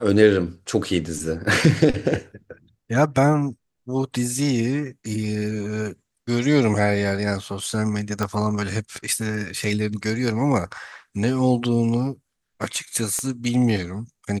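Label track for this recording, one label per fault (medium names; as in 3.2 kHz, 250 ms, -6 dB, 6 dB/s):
8.230000	8.230000	pop -11 dBFS
13.190000	13.190000	pop -14 dBFS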